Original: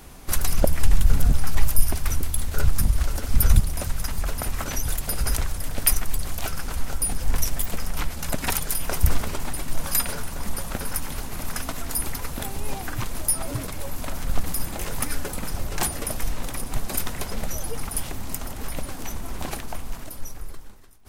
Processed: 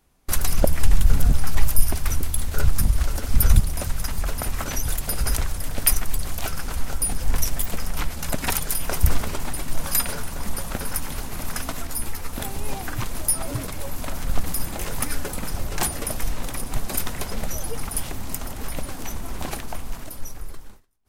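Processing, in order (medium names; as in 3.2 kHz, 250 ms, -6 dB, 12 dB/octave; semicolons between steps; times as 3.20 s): gate with hold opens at -29 dBFS; 11.87–12.33 s: three-phase chorus; trim +1 dB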